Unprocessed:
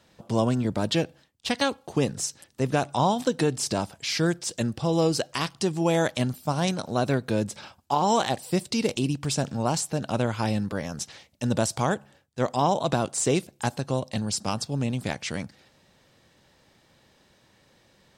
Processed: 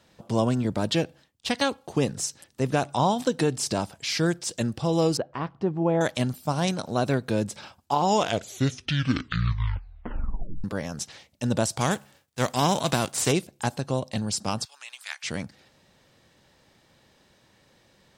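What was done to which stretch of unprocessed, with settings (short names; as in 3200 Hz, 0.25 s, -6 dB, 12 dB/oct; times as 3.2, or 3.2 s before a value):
5.17–6.01 LPF 1200 Hz
7.95 tape stop 2.69 s
11.8–13.31 spectral whitening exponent 0.6
14.65–15.24 HPF 1200 Hz 24 dB/oct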